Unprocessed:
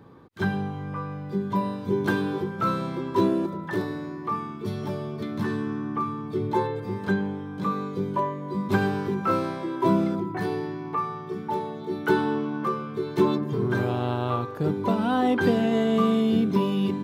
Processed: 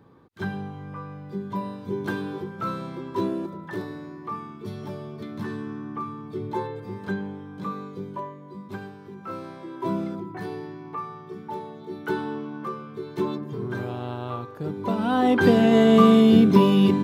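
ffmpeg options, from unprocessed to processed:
-af "volume=19.5dB,afade=t=out:st=7.61:d=1.37:silence=0.237137,afade=t=in:st=8.98:d=1:silence=0.266073,afade=t=in:st=14.72:d=1.17:silence=0.237137"

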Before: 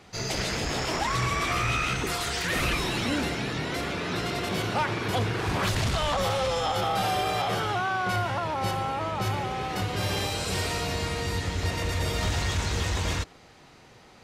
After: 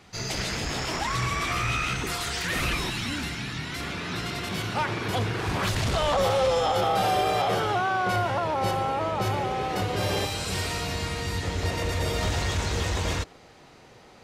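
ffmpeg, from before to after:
-af "asetnsamples=n=441:p=0,asendcmd='2.9 equalizer g -13.5;3.8 equalizer g -7;4.77 equalizer g -1;5.88 equalizer g 5.5;10.25 equalizer g -2.5;11.43 equalizer g 3.5',equalizer=f=510:t=o:w=1.4:g=-3.5"

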